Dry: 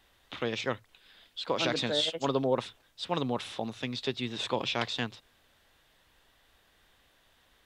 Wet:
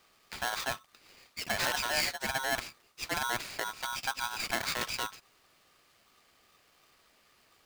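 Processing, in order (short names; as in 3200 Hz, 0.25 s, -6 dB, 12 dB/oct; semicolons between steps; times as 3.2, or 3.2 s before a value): one diode to ground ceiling -24 dBFS; 2.07–2.66 low shelf 480 Hz -5 dB; polarity switched at an audio rate 1200 Hz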